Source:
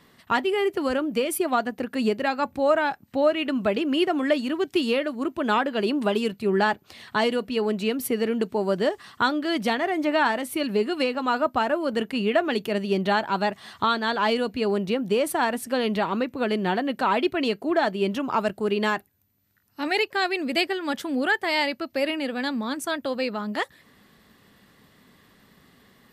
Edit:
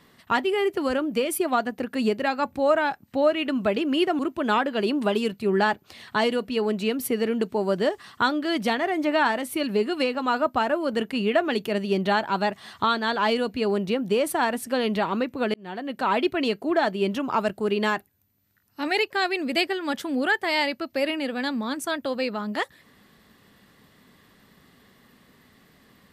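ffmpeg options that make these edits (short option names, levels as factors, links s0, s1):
-filter_complex "[0:a]asplit=3[s0][s1][s2];[s0]atrim=end=4.192[s3];[s1]atrim=start=5.188:end=16.54,asetpts=PTS-STARTPTS,afade=t=out:st=11.348:d=0.004:c=hsin[s4];[s2]atrim=start=16.54,asetpts=PTS-STARTPTS,afade=t=in:d=0.61[s5];[s4][s5]concat=n=2:v=0:a=1[s6];[s3][s6]acrossfade=d=0.004:c1=hsin:c2=hsin"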